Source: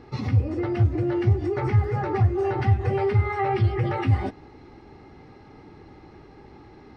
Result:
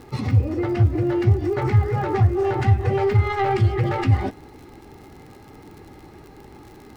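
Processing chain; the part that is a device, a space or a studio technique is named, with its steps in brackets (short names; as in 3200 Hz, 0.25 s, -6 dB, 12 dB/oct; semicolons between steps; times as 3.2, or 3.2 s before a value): record under a worn stylus (tracing distortion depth 0.079 ms; crackle 68/s -40 dBFS; pink noise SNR 41 dB); gain +3 dB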